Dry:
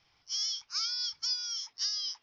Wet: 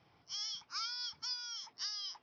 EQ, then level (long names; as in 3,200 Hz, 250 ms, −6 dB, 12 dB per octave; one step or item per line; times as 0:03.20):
band-pass filter 120–5,600 Hz
tilt shelving filter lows +9 dB, about 1,300 Hz
+2.0 dB